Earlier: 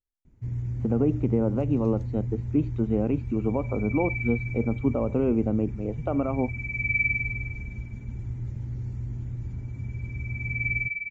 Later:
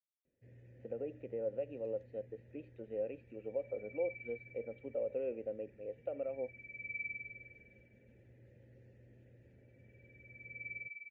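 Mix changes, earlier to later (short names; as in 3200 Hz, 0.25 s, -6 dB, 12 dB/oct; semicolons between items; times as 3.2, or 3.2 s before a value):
speech: add low shelf 490 Hz -8 dB; second sound: add Bessel high-pass 2200 Hz; master: add vowel filter e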